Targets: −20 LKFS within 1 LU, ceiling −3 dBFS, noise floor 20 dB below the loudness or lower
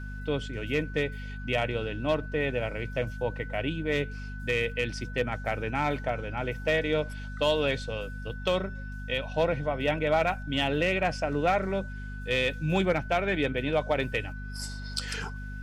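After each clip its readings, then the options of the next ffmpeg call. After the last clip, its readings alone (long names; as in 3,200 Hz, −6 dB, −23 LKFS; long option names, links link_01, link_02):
mains hum 50 Hz; hum harmonics up to 250 Hz; level of the hum −36 dBFS; interfering tone 1,500 Hz; level of the tone −44 dBFS; integrated loudness −29.5 LKFS; sample peak −15.0 dBFS; target loudness −20.0 LKFS
→ -af "bandreject=frequency=50:width_type=h:width=6,bandreject=frequency=100:width_type=h:width=6,bandreject=frequency=150:width_type=h:width=6,bandreject=frequency=200:width_type=h:width=6,bandreject=frequency=250:width_type=h:width=6"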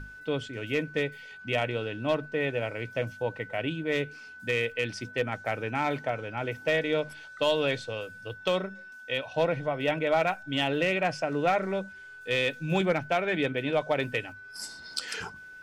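mains hum none found; interfering tone 1,500 Hz; level of the tone −44 dBFS
→ -af "bandreject=frequency=1500:width=30"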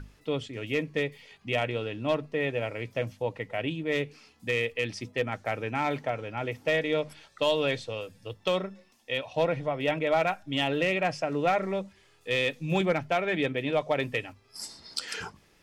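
interfering tone none found; integrated loudness −29.5 LKFS; sample peak −15.5 dBFS; target loudness −20.0 LKFS
→ -af "volume=9.5dB"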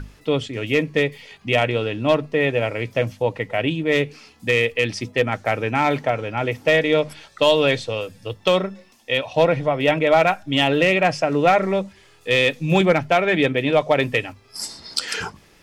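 integrated loudness −20.0 LKFS; sample peak −6.0 dBFS; background noise floor −53 dBFS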